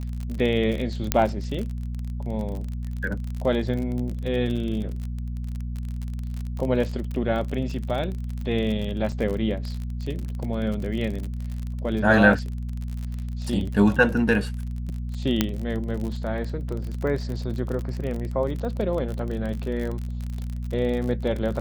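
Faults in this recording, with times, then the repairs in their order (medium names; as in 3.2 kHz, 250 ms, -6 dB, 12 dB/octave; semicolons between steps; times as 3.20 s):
crackle 40 per s -29 dBFS
hum 60 Hz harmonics 4 -30 dBFS
1.12 s: pop -3 dBFS
9.12 s: dropout 4.2 ms
15.41 s: pop -5 dBFS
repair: de-click; de-hum 60 Hz, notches 4; interpolate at 9.12 s, 4.2 ms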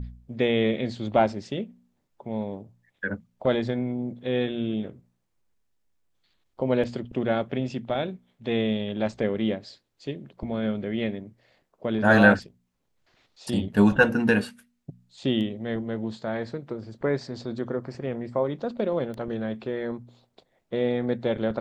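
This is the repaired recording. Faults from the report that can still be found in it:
15.41 s: pop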